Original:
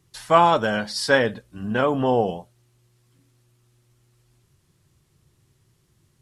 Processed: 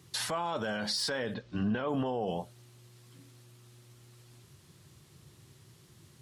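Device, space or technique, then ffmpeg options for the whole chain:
broadcast voice chain: -filter_complex "[0:a]asettb=1/sr,asplit=3[a][b][c];[a]atrim=end=1.344[d];[b]atrim=start=1.34:end=1.89,asetpts=PTS-STARTPTS,afade=t=in:d=0.004:c=qsin,afade=t=out:st=0.546:d=0.004:c=qsin,lowpass=f=5.5k:w=0.5412,lowpass=f=5.5k:w=1.3066[e];[c]atrim=start=1.886[f];[d][e]acrossfade=d=0.004:c1=hsin:c2=qsin[g];[g][f]acrossfade=d=0.004:c1=qsin:c2=hsin,highpass=88,deesser=0.6,acompressor=threshold=-30dB:ratio=4,equalizer=f=3.9k:t=o:w=0.77:g=3,alimiter=level_in=6dB:limit=-24dB:level=0:latency=1:release=46,volume=-6dB,volume=6.5dB"

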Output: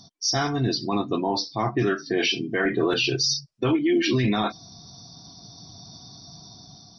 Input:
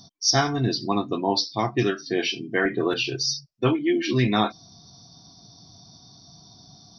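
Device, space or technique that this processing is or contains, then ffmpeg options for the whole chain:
low-bitrate web radio: -filter_complex "[0:a]asettb=1/sr,asplit=3[a][b][c];[a]atrim=end=1.304[d];[b]atrim=start=1.3:end=2.18,asetpts=PTS-STARTPTS,afade=t=in:d=0.004:c=qsin,afade=t=out:st=0.876:d=0.004:c=qsin,highshelf=f=2.2k:t=q:w=1.5:g=-6[e];[c]atrim=start=2.176[f];[d][e]acrossfade=d=0.004:c1=hsin:c2=qsin[g];[g][f]acrossfade=d=0.004:c1=qsin:c2=hsin,dynaudnorm=f=430:g=5:m=6dB,alimiter=limit=-14dB:level=0:latency=1:release=11" -ar 48000 -c:a libmp3lame -b:a 40k

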